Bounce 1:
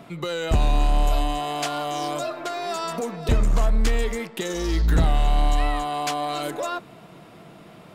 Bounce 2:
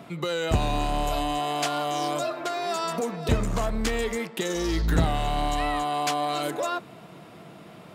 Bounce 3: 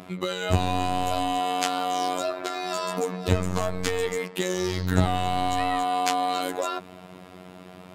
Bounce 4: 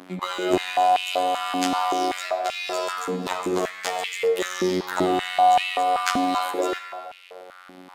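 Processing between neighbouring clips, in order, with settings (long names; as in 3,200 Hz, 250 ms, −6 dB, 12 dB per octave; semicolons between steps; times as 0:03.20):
high-pass filter 69 Hz 12 dB per octave
phases set to zero 91.5 Hz; level +3 dB
dead-zone distortion −43 dBFS; on a send at −5.5 dB: convolution reverb RT60 2.0 s, pre-delay 21 ms; on the sum: high-pass on a step sequencer 5.2 Hz 250–2,600 Hz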